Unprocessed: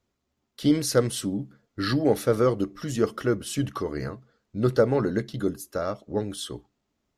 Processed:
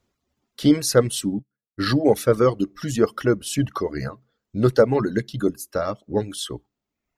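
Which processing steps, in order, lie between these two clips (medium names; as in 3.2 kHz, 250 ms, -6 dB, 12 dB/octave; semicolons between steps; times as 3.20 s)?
reverb removal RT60 0.95 s; 1.39–1.86 s: upward expansion 2.5:1, over -43 dBFS; trim +5 dB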